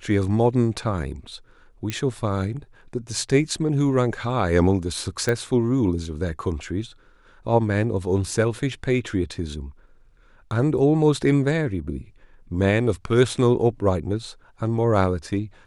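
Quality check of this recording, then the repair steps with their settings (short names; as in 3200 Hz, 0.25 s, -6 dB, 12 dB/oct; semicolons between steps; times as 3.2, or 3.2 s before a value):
1.9 pop -12 dBFS
5.29 pop -11 dBFS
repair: de-click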